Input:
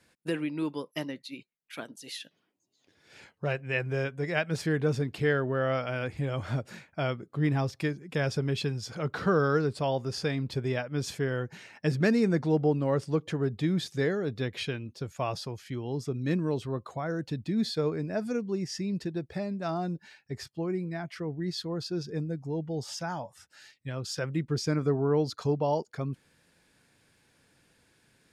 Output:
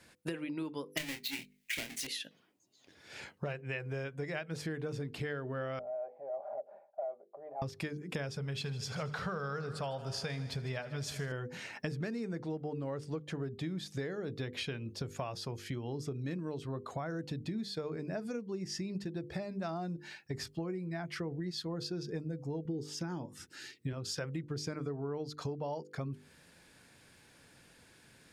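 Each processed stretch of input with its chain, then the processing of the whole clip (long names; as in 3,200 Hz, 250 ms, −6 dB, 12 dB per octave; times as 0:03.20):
0:00.97–0:02.07: each half-wave held at its own peak + high shelf with overshoot 1,600 Hz +8.5 dB, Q 3 + double-tracking delay 25 ms −7 dB
0:05.79–0:07.62: flat-topped band-pass 660 Hz, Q 3.4 + comb filter 5 ms, depth 46% + transient designer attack −5 dB, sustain +2 dB
0:08.36–0:11.32: parametric band 320 Hz −14 dB 0.62 octaves + echo machine with several playback heads 78 ms, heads first and second, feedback 65%, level −19.5 dB
0:22.65–0:23.93: high-pass filter 140 Hz 6 dB per octave + low shelf with overshoot 480 Hz +8.5 dB, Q 3
whole clip: mains-hum notches 50/100/150/200/250/300/350/400/450/500 Hz; downward compressor 12 to 1, threshold −40 dBFS; level +5 dB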